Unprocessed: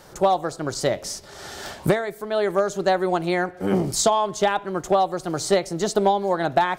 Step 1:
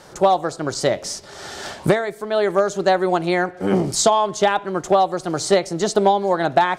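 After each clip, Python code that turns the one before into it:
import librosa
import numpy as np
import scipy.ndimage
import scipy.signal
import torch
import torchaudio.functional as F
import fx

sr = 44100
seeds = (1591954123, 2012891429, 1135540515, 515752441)

y = scipy.signal.sosfilt(scipy.signal.butter(2, 9900.0, 'lowpass', fs=sr, output='sos'), x)
y = fx.low_shelf(y, sr, hz=74.0, db=-8.0)
y = y * 10.0 ** (3.5 / 20.0)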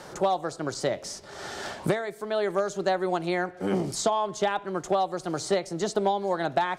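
y = fx.band_squash(x, sr, depth_pct=40)
y = y * 10.0 ** (-8.5 / 20.0)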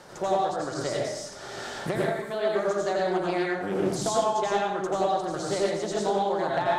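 y = fx.rev_plate(x, sr, seeds[0], rt60_s=0.83, hf_ratio=0.8, predelay_ms=75, drr_db=-4.0)
y = fx.doppler_dist(y, sr, depth_ms=0.2)
y = y * 10.0 ** (-5.0 / 20.0)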